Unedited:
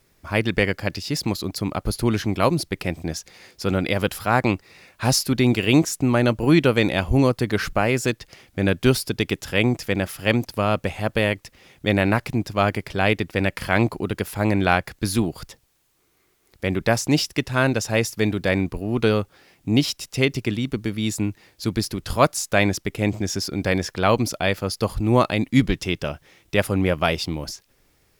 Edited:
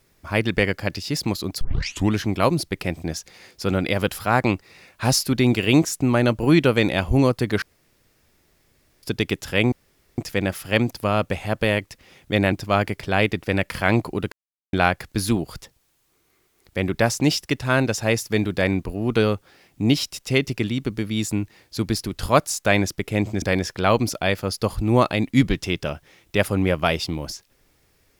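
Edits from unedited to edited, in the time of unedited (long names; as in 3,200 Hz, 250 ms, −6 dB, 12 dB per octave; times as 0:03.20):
0:01.61: tape start 0.52 s
0:07.62–0:09.03: fill with room tone
0:09.72: splice in room tone 0.46 s
0:12.06–0:12.39: remove
0:14.19–0:14.60: silence
0:23.29–0:23.61: remove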